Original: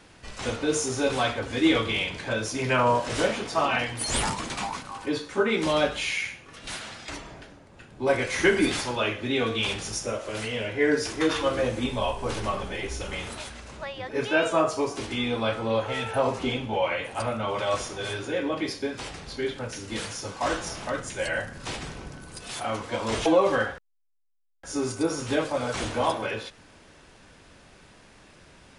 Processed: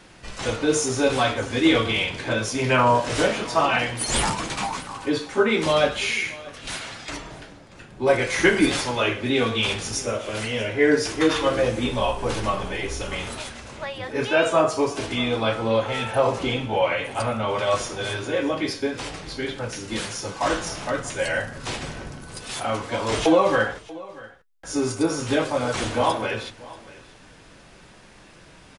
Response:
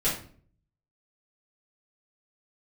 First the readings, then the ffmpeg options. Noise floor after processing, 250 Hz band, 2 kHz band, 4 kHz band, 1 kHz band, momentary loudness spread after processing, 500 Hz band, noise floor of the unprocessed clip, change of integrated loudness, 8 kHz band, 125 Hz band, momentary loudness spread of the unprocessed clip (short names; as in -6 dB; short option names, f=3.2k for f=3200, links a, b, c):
-49 dBFS, +4.0 dB, +3.5 dB, +4.0 dB, +4.0 dB, 14 LU, +4.0 dB, -53 dBFS, +4.0 dB, +4.0 dB, +4.5 dB, 13 LU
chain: -af "flanger=delay=5.4:depth=3.2:regen=-61:speed=0.25:shape=triangular,aecho=1:1:635:0.1,volume=8dB"